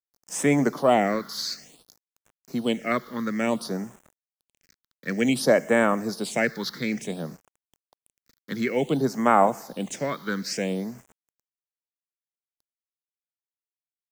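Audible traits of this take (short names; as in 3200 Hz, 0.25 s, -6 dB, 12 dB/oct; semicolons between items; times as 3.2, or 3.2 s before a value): a quantiser's noise floor 8-bit, dither none; phasing stages 6, 0.56 Hz, lowest notch 670–4400 Hz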